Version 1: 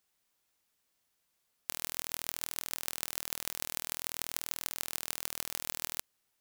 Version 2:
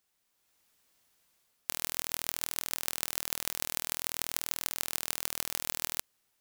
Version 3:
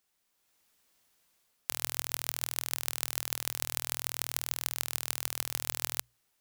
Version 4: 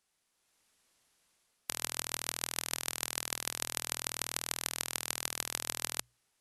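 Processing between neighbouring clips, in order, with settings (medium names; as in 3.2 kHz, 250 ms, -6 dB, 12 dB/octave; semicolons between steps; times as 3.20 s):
level rider gain up to 7.5 dB
hum notches 60/120 Hz
brick-wall FIR low-pass 12 kHz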